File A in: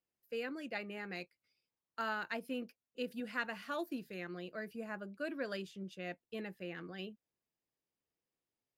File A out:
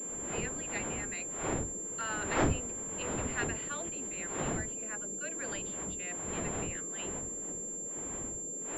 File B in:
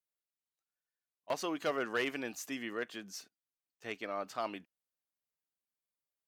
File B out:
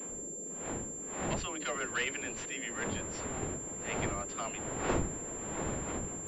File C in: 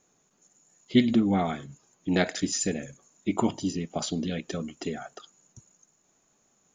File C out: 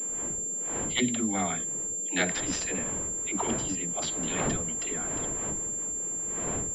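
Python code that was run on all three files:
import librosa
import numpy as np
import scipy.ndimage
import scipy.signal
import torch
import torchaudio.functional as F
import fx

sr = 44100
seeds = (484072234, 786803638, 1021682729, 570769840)

y = fx.dmg_wind(x, sr, seeds[0], corner_hz=390.0, level_db=-33.0)
y = fx.tilt_shelf(y, sr, db=-8.5, hz=1300.0)
y = fx.dispersion(y, sr, late='lows', ms=100.0, hz=320.0)
y = fx.dmg_noise_band(y, sr, seeds[1], low_hz=160.0, high_hz=530.0, level_db=-49.0)
y = fx.pwm(y, sr, carrier_hz=7300.0)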